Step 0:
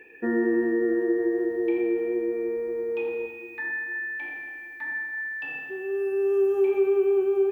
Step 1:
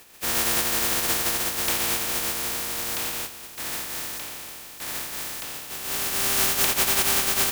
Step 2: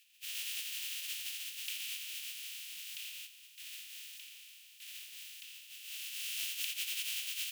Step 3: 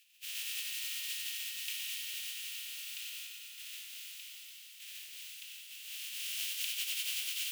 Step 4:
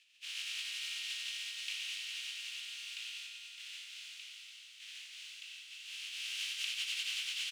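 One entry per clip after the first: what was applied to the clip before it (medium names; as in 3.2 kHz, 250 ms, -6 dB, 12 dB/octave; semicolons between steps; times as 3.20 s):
spectral contrast reduction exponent 0.11
ladder high-pass 2.5 kHz, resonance 60%; trim -7.5 dB
multi-head delay 96 ms, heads first and third, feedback 72%, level -9 dB
distance through air 86 m; doubling 19 ms -9 dB; trim +2.5 dB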